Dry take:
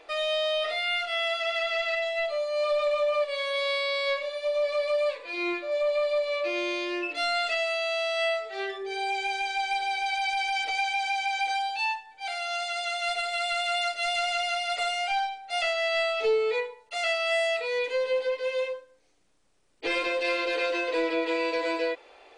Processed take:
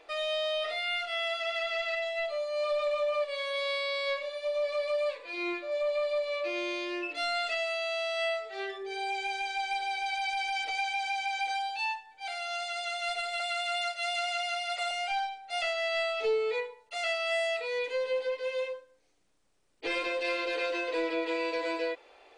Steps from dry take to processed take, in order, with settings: 13.40–14.91 s: high-pass 540 Hz 24 dB/octave; trim -4 dB

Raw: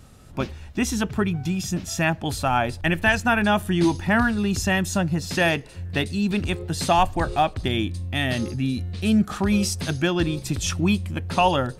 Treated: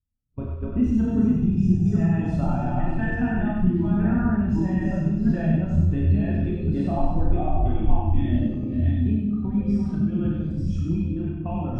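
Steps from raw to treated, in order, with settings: chunks repeated in reverse 533 ms, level -2 dB; Doppler pass-by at 3.75 s, 7 m/s, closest 7.9 m; treble shelf 2.6 kHz -2.5 dB; gate with hold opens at -30 dBFS; compression 10:1, threshold -34 dBFS, peak gain reduction 20.5 dB; tilt EQ -2.5 dB/octave; on a send: two-band feedback delay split 430 Hz, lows 239 ms, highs 96 ms, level -3 dB; on the sum: Schroeder reverb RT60 0.53 s, combs from 25 ms, DRR -1 dB; spectral contrast expander 1.5:1; trim +7.5 dB

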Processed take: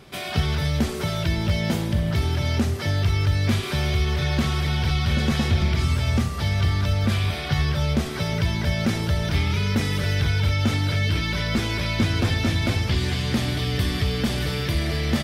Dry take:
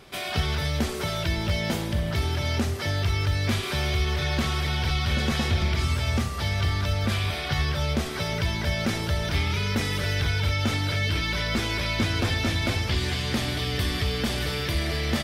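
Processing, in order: peaking EQ 150 Hz +6 dB 2 oct

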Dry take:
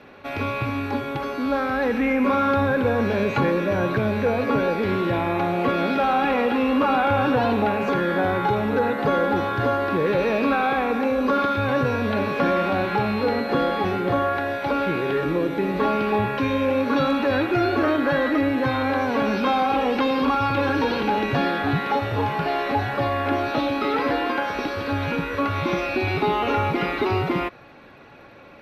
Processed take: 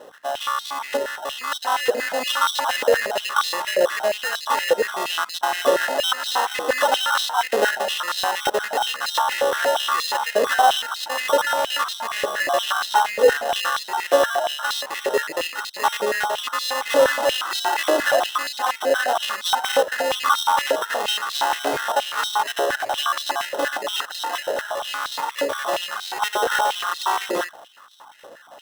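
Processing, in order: random holes in the spectrogram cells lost 28%; sample-rate reducer 2.3 kHz, jitter 0%; hum 60 Hz, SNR 19 dB; step-sequenced high-pass 8.5 Hz 510–3900 Hz

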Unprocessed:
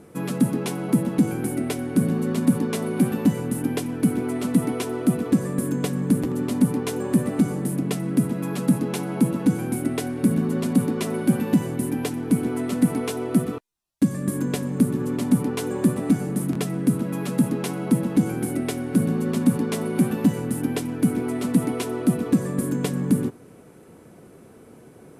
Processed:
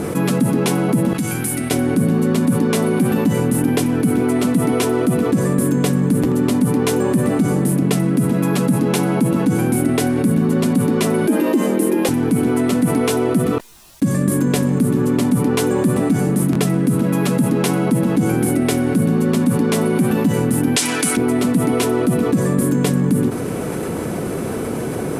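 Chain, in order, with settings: 1.13–1.71 s: amplifier tone stack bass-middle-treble 5-5-5; 11.27–12.09 s: frequency shift +78 Hz; 20.76–21.17 s: frequency weighting ITU-R 468; level flattener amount 70%

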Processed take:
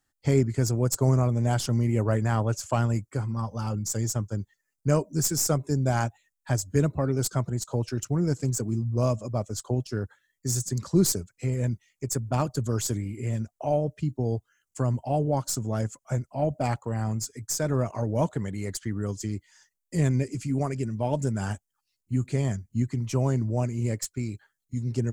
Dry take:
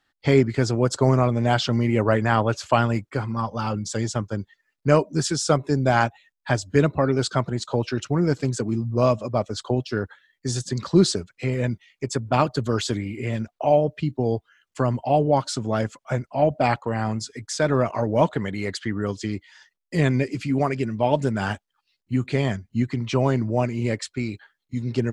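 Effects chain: tracing distortion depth 0.029 ms; FFT filter 110 Hz 0 dB, 230 Hz -5 dB, 3.8 kHz -13 dB, 6.9 kHz +5 dB

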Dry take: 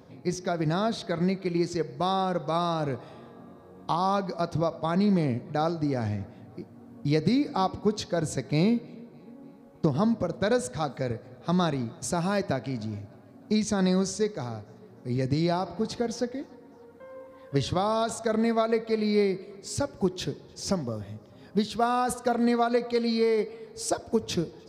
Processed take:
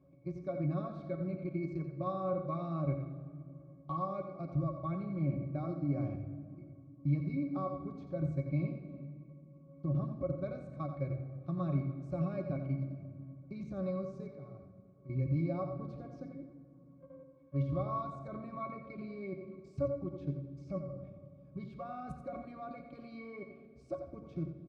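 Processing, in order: level held to a coarse grid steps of 15 dB; pitch-class resonator C#, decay 0.1 s; delay 88 ms -9 dB; simulated room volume 3800 m³, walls mixed, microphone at 1 m; trim +2 dB

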